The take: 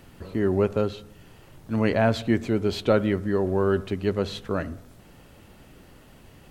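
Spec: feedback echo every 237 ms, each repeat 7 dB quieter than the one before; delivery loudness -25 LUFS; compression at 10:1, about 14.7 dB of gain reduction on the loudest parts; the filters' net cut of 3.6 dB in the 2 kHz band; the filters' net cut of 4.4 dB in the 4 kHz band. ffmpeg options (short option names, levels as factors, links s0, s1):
-af "equalizer=f=2000:t=o:g=-4,equalizer=f=4000:t=o:g=-4,acompressor=threshold=0.0282:ratio=10,aecho=1:1:237|474|711|948|1185:0.447|0.201|0.0905|0.0407|0.0183,volume=3.76"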